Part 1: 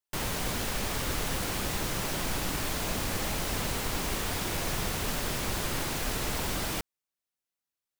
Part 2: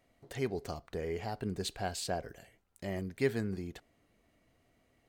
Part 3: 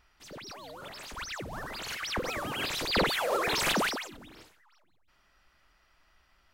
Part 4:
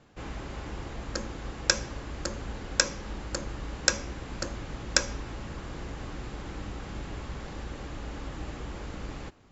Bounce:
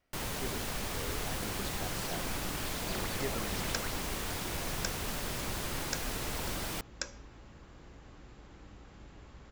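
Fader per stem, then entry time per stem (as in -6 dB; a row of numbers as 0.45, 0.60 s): -5.0, -8.5, -15.5, -14.5 dB; 0.00, 0.00, 0.00, 2.05 s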